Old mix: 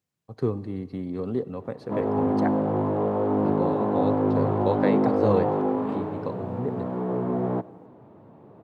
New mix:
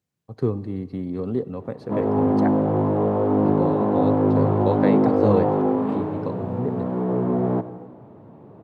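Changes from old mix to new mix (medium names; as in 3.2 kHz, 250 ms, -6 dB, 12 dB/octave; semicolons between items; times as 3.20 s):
background: send +9.5 dB; master: add bass shelf 440 Hz +4 dB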